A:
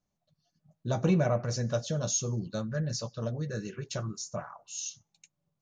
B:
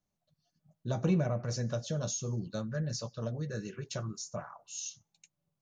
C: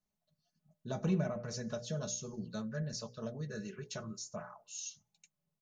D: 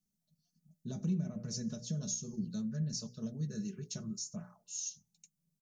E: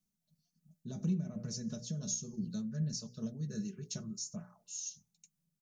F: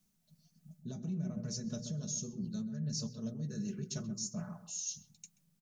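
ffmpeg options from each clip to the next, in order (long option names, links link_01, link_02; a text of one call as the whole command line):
ffmpeg -i in.wav -filter_complex "[0:a]acrossover=split=350[link_01][link_02];[link_02]acompressor=threshold=-31dB:ratio=6[link_03];[link_01][link_03]amix=inputs=2:normalize=0,volume=-2.5dB" out.wav
ffmpeg -i in.wav -af "bandreject=frequency=60:width_type=h:width=6,bandreject=frequency=120:width_type=h:width=6,bandreject=frequency=180:width_type=h:width=6,bandreject=frequency=240:width_type=h:width=6,bandreject=frequency=300:width_type=h:width=6,bandreject=frequency=360:width_type=h:width=6,bandreject=frequency=420:width_type=h:width=6,bandreject=frequency=480:width_type=h:width=6,bandreject=frequency=540:width_type=h:width=6,bandreject=frequency=600:width_type=h:width=6,aecho=1:1:4.7:0.47,volume=-4dB" out.wav
ffmpeg -i in.wav -af "alimiter=level_in=6dB:limit=-24dB:level=0:latency=1:release=217,volume=-6dB,firequalizer=gain_entry='entry(120,0);entry(170,7);entry(540,-10);entry(1000,-13);entry(5600,4)':delay=0.05:min_phase=1" out.wav
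ffmpeg -i in.wav -af "tremolo=f=2.8:d=0.33,volume=1dB" out.wav
ffmpeg -i in.wav -filter_complex "[0:a]areverse,acompressor=threshold=-46dB:ratio=6,areverse,asplit=2[link_01][link_02];[link_02]adelay=131,lowpass=frequency=860:poles=1,volume=-7.5dB,asplit=2[link_03][link_04];[link_04]adelay=131,lowpass=frequency=860:poles=1,volume=0.24,asplit=2[link_05][link_06];[link_06]adelay=131,lowpass=frequency=860:poles=1,volume=0.24[link_07];[link_01][link_03][link_05][link_07]amix=inputs=4:normalize=0,volume=9dB" out.wav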